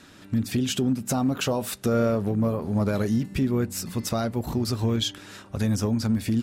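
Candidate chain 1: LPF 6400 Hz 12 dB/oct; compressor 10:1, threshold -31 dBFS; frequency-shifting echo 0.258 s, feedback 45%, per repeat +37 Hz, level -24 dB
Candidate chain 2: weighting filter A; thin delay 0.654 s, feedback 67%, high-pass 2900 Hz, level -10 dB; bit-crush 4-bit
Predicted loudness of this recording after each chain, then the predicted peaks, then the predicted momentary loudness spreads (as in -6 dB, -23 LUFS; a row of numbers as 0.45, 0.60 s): -35.5, -31.5 LUFS; -20.5, -17.0 dBFS; 2, 12 LU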